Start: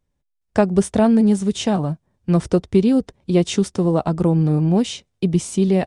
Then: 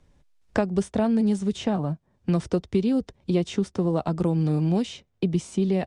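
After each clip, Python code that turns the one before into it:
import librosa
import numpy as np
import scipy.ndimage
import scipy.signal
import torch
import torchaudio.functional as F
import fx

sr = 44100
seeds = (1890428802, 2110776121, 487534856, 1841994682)

y = scipy.signal.sosfilt(scipy.signal.bessel(2, 6900.0, 'lowpass', norm='mag', fs=sr, output='sos'), x)
y = fx.band_squash(y, sr, depth_pct=70)
y = y * librosa.db_to_amplitude(-7.0)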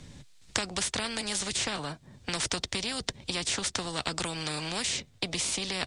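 y = fx.graphic_eq_10(x, sr, hz=(125, 250, 2000, 4000, 8000), db=(10, 5, 5, 10, 11))
y = fx.spectral_comp(y, sr, ratio=4.0)
y = y * librosa.db_to_amplitude(-3.0)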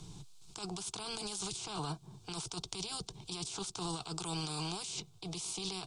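y = fx.over_compress(x, sr, threshold_db=-36.0, ratio=-1.0)
y = fx.fixed_phaser(y, sr, hz=370.0, stages=8)
y = y * librosa.db_to_amplitude(-2.0)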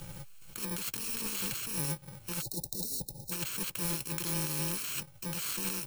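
y = fx.bit_reversed(x, sr, seeds[0], block=64)
y = fx.spec_erase(y, sr, start_s=2.42, length_s=0.89, low_hz=880.0, high_hz=3600.0)
y = y * librosa.db_to_amplitude(5.0)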